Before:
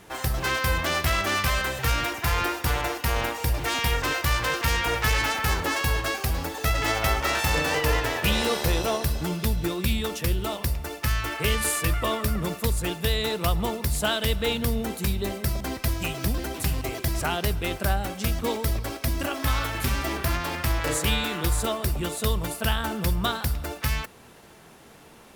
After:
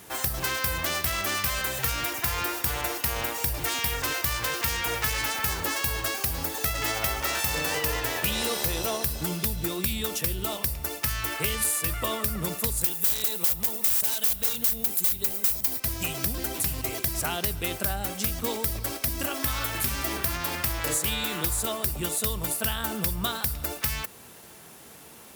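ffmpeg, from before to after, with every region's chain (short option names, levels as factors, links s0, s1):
-filter_complex "[0:a]asettb=1/sr,asplit=3[s0][s1][s2];[s0]atrim=end=12.814[s3];[s1]atrim=start=12.81:end=15.8,asetpts=PTS-STARTPTS,afade=t=in:d=0.004:c=qsin,afade=t=out:st=2.986:d=0.004:c=qsin,aemphasis=mode=production:type=50fm,aeval=exprs='(mod(6.31*val(0)+1,2)-1)/6.31':c=same[s4];[s2]atrim=start=15.796[s5];[s3][s4]acrossfade=d=0.004:c1=hsin:c2=qsin[s6];[s6][s5]acrossfade=d=0.004:c1=qsin:c2=hsin,highpass=54,aemphasis=mode=production:type=50kf,acompressor=threshold=0.0631:ratio=3,volume=0.891"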